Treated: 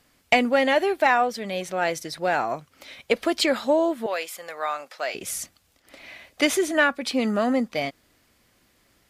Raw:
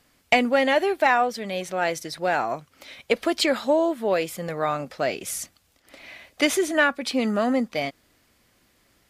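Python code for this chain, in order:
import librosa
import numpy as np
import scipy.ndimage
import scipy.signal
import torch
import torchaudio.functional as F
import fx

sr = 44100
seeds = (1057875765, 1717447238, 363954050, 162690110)

y = fx.highpass(x, sr, hz=760.0, slope=12, at=(4.06, 5.15))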